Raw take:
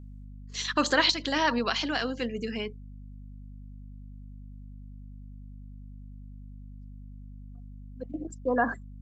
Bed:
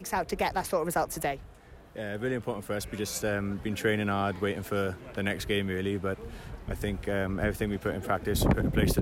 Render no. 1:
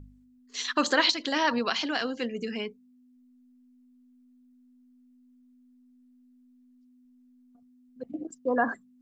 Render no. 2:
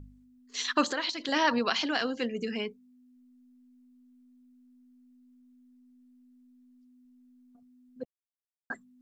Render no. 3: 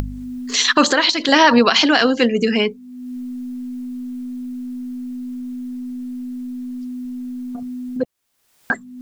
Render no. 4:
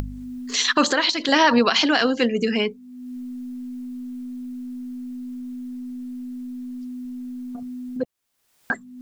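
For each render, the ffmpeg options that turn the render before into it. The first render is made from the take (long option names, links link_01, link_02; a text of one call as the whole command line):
ffmpeg -i in.wav -af "bandreject=frequency=50:width_type=h:width=4,bandreject=frequency=100:width_type=h:width=4,bandreject=frequency=150:width_type=h:width=4,bandreject=frequency=200:width_type=h:width=4" out.wav
ffmpeg -i in.wav -filter_complex "[0:a]asettb=1/sr,asplit=3[link_01][link_02][link_03];[link_01]atrim=end=0.844[link_04];[link_02]atrim=start=0.84:end=1.29,asetpts=PTS-STARTPTS,afade=type=in:duration=0.004:curve=qsin,afade=type=out:start_time=0.446:duration=0.004:curve=qsin,acompressor=threshold=-32dB:ratio=2.5:attack=3.2:release=140:knee=1:detection=peak[link_05];[link_03]atrim=start=1.286[link_06];[link_04][link_05]acrossfade=duration=0.004:curve1=hsin:curve2=qsin[link_07];[link_07][link_06]acrossfade=duration=0.004:curve1=qsin:curve2=hsin,asplit=3[link_08][link_09][link_10];[link_08]atrim=end=8.05,asetpts=PTS-STARTPTS,afade=type=out:start_time=8.046:duration=0.004:curve=hsin[link_11];[link_09]atrim=start=8.05:end=8.7,asetpts=PTS-STARTPTS,volume=0[link_12];[link_10]atrim=start=8.7,asetpts=PTS-STARTPTS,afade=type=in:duration=0.004:curve=hsin[link_13];[link_11][link_12][link_13]concat=n=3:v=0:a=1" out.wav
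ffmpeg -i in.wav -af "acompressor=mode=upward:threshold=-32dB:ratio=2.5,alimiter=level_in=16dB:limit=-1dB:release=50:level=0:latency=1" out.wav
ffmpeg -i in.wav -af "volume=-4.5dB" out.wav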